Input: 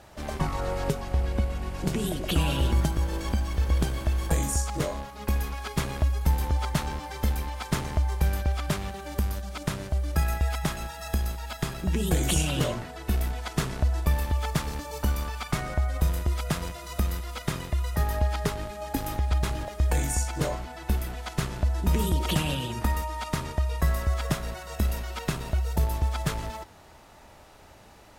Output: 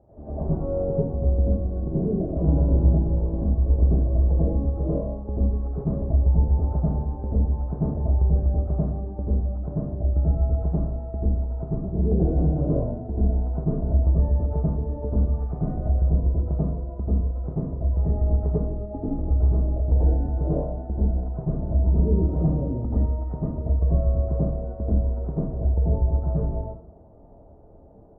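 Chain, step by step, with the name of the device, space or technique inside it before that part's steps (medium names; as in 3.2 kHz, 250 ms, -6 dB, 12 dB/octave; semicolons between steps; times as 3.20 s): next room (low-pass 650 Hz 24 dB/octave; reverberation RT60 0.50 s, pre-delay 78 ms, DRR -8 dB); trim -4.5 dB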